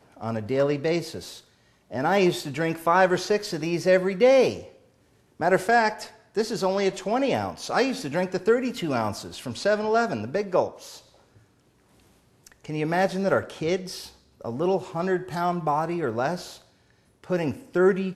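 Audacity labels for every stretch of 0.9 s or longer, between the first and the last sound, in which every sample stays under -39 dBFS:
10.990000	12.470000	silence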